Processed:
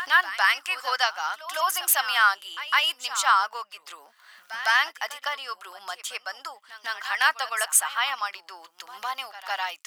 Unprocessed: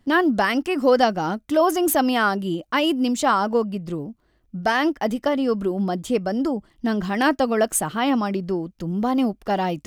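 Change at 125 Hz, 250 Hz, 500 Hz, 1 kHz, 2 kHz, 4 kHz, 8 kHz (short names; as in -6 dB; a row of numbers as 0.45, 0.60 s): under -40 dB, under -40 dB, -19.0 dB, -2.5 dB, +3.5 dB, +3.5 dB, +3.5 dB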